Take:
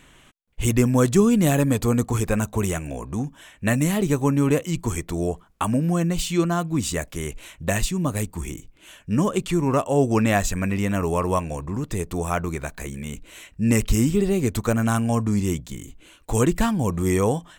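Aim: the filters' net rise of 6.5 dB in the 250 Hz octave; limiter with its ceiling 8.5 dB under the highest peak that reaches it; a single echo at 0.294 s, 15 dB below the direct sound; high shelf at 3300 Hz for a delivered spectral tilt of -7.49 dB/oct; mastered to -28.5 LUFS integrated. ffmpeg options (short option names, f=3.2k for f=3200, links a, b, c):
-af "equalizer=f=250:t=o:g=8,highshelf=f=3.3k:g=-5.5,alimiter=limit=-11.5dB:level=0:latency=1,aecho=1:1:294:0.178,volume=-7dB"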